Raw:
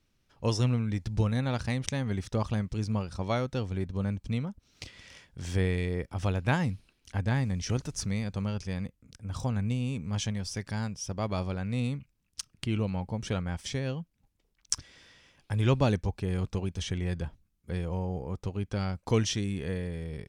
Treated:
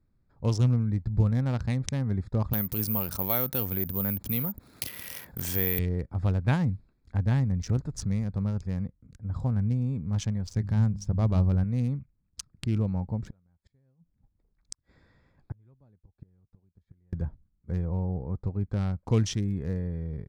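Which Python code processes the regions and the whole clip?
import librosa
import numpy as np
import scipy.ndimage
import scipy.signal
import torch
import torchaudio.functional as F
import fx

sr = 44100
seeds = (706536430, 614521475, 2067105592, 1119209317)

y = fx.chain(x, sr, fx.highpass(hz=390.0, slope=6),
    fx.resample_bad(factor=3, down='none', up='zero_stuff'),
    fx.env_flatten(amount_pct=50), at=(2.53, 5.79))
y = fx.chain(y, sr, fx.low_shelf(hz=200.0, db=10.0),
    fx.hum_notches(base_hz=50, count=7), at=(10.55, 11.64))
y = fx.chain(y, sr, fx.gate_flip(shuts_db=-25.0, range_db=-37),
    fx.transformer_sat(knee_hz=440.0), at=(13.26, 17.13))
y = fx.wiener(y, sr, points=15)
y = fx.bass_treble(y, sr, bass_db=7, treble_db=2)
y = y * 10.0 ** (-2.5 / 20.0)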